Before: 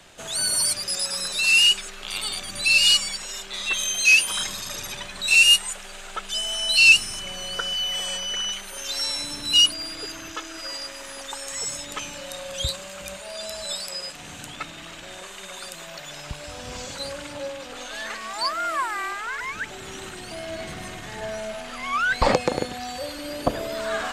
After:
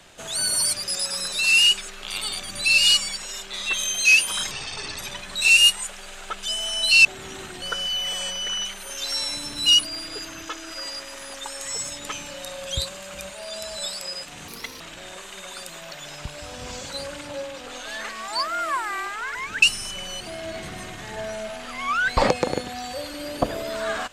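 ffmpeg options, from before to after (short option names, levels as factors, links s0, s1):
-filter_complex "[0:a]asplit=9[s0][s1][s2][s3][s4][s5][s6][s7][s8];[s0]atrim=end=4.514[s9];[s1]atrim=start=4.51:end=4.85,asetpts=PTS-STARTPTS,asetrate=31311,aresample=44100,atrim=end_sample=21118,asetpts=PTS-STARTPTS[s10];[s2]atrim=start=4.846:end=6.912[s11];[s3]atrim=start=19.678:end=20.252[s12];[s4]atrim=start=7.488:end=14.354[s13];[s5]atrim=start=14.35:end=14.86,asetpts=PTS-STARTPTS,asetrate=69237,aresample=44100,atrim=end_sample=14325,asetpts=PTS-STARTPTS[s14];[s6]atrim=start=14.856:end=19.682[s15];[s7]atrim=start=6.908:end=7.492[s16];[s8]atrim=start=20.248[s17];[s9][s10]acrossfade=d=0.004:c1=hsin:c2=hsin[s18];[s18][s11]acrossfade=d=0.004:c1=hsin:c2=hsin[s19];[s19][s12]acrossfade=d=0.004:c1=hsin:c2=hsin[s20];[s20][s13]acrossfade=d=0.004:c1=hsin:c2=hsin[s21];[s21][s14]acrossfade=d=0.004:c1=hsin:c2=hsin[s22];[s22][s15]acrossfade=d=0.004:c1=hsin:c2=hsin[s23];[s23][s16]acrossfade=d=0.004:c1=hsin:c2=hsin[s24];[s24][s17]acrossfade=d=0.004:c1=hsin:c2=hsin"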